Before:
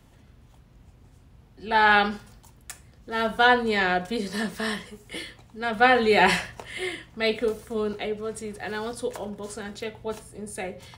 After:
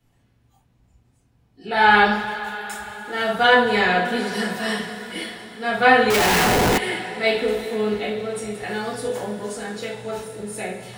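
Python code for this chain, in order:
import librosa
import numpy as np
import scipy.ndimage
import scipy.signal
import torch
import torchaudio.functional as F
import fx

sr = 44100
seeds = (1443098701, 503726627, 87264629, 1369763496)

y = fx.rev_double_slope(x, sr, seeds[0], early_s=0.39, late_s=4.8, knee_db=-18, drr_db=-7.5)
y = fx.schmitt(y, sr, flips_db=-22.5, at=(6.1, 6.78))
y = fx.noise_reduce_blind(y, sr, reduce_db=12)
y = y * 10.0 ** (-3.5 / 20.0)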